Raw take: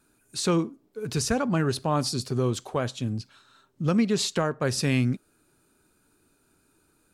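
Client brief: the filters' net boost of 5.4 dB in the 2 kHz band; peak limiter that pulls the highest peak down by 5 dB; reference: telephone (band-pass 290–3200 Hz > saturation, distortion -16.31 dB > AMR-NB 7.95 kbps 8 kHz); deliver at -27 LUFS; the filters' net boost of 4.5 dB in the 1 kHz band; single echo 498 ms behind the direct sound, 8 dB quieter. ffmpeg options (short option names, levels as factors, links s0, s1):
-af "equalizer=f=1000:t=o:g=4,equalizer=f=2000:t=o:g=6.5,alimiter=limit=0.188:level=0:latency=1,highpass=290,lowpass=3200,aecho=1:1:498:0.398,asoftclip=threshold=0.106,volume=1.88" -ar 8000 -c:a libopencore_amrnb -b:a 7950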